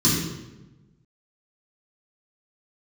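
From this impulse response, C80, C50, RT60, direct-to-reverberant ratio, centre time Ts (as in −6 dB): 3.5 dB, 0.5 dB, 1.0 s, −9.5 dB, 68 ms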